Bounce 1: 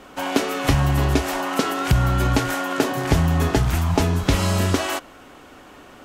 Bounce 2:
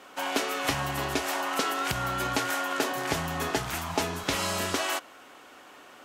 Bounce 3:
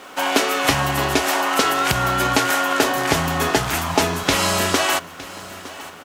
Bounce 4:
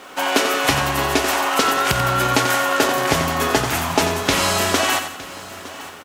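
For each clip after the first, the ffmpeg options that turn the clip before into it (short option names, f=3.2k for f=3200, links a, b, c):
-af "highpass=f=670:p=1,acontrast=49,volume=-8.5dB"
-filter_complex "[0:a]aecho=1:1:911|1822|2733:0.126|0.0504|0.0201,asplit=2[a][b];[b]acrusher=bits=7:mix=0:aa=0.000001,volume=-11dB[c];[a][c]amix=inputs=2:normalize=0,volume=8dB"
-af "aecho=1:1:89|178|267|356|445:0.376|0.165|0.0728|0.032|0.0141"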